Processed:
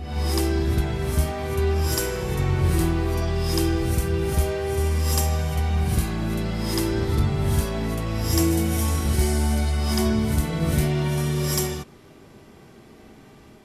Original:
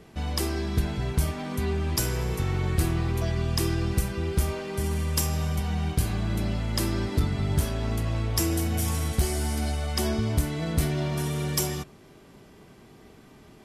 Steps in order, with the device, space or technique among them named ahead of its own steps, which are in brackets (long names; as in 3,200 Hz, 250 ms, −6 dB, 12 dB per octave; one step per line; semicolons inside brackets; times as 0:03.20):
reverse reverb (reversed playback; convolution reverb RT60 0.85 s, pre-delay 40 ms, DRR −0.5 dB; reversed playback)